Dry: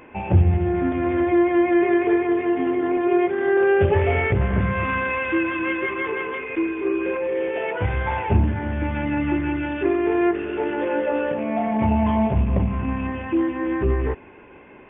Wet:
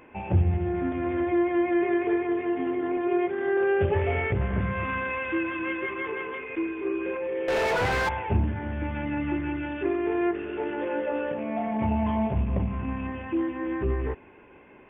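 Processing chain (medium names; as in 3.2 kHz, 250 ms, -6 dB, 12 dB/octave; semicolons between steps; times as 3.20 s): 7.48–8.09 s: overdrive pedal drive 36 dB, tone 1.8 kHz, clips at -11.5 dBFS; trim -6 dB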